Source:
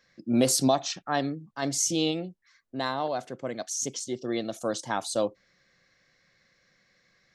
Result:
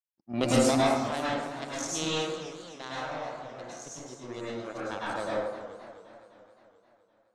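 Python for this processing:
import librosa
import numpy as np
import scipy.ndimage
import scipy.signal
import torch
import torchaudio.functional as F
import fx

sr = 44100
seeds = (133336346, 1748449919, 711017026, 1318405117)

y = fx.spec_quant(x, sr, step_db=15)
y = fx.power_curve(y, sr, exponent=2.0)
y = scipy.signal.sosfilt(scipy.signal.butter(2, 9200.0, 'lowpass', fs=sr, output='sos'), y)
y = fx.rev_plate(y, sr, seeds[0], rt60_s=1.1, hf_ratio=0.45, predelay_ms=90, drr_db=-7.5)
y = fx.echo_warbled(y, sr, ms=259, feedback_pct=63, rate_hz=2.8, cents=177, wet_db=-14)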